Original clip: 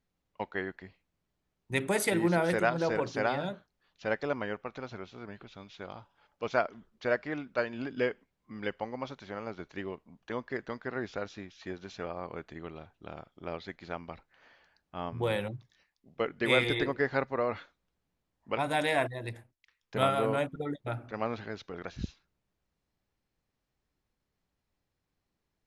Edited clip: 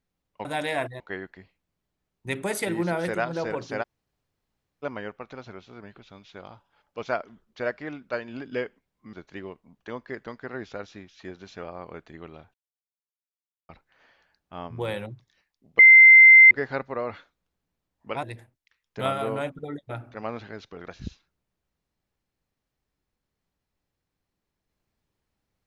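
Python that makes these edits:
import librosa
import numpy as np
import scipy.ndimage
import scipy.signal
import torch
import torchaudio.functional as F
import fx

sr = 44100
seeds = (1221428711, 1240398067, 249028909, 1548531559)

y = fx.edit(x, sr, fx.room_tone_fill(start_s=3.28, length_s=1.0, crossfade_s=0.02),
    fx.cut(start_s=8.58, length_s=0.97),
    fx.silence(start_s=12.96, length_s=1.15),
    fx.bleep(start_s=16.21, length_s=0.72, hz=2080.0, db=-7.5),
    fx.move(start_s=18.65, length_s=0.55, to_s=0.45), tone=tone)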